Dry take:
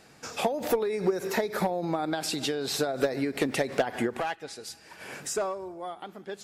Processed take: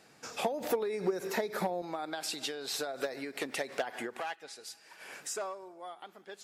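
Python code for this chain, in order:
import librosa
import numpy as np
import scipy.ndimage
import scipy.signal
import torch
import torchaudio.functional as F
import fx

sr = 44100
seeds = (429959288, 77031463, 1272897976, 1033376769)

y = fx.highpass(x, sr, hz=fx.steps((0.0, 160.0), (1.82, 690.0)), slope=6)
y = y * librosa.db_to_amplitude(-4.5)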